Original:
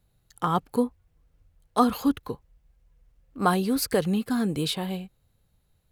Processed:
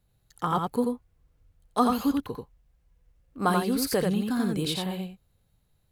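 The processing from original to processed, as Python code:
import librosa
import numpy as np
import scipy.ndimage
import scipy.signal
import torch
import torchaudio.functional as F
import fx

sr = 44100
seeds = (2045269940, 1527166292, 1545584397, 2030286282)

y = x + 10.0 ** (-3.5 / 20.0) * np.pad(x, (int(87 * sr / 1000.0), 0))[:len(x)]
y = y * 10.0 ** (-2.5 / 20.0)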